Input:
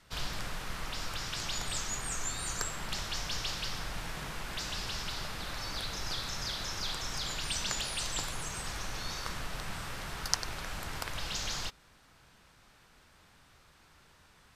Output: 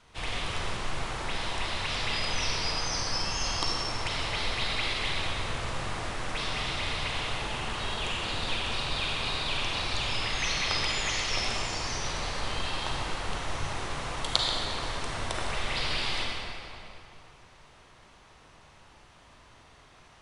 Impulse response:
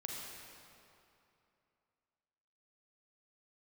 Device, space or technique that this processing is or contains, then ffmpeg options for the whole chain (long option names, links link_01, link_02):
slowed and reverbed: -filter_complex "[0:a]asetrate=31752,aresample=44100[link_01];[1:a]atrim=start_sample=2205[link_02];[link_01][link_02]afir=irnorm=-1:irlink=0,volume=6.5dB"